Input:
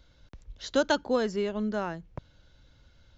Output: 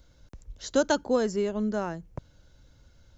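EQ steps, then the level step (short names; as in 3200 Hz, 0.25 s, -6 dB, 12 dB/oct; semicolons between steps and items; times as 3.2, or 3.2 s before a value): EQ curve 470 Hz 0 dB, 3600 Hz -6 dB, 7300 Hz +6 dB; +2.0 dB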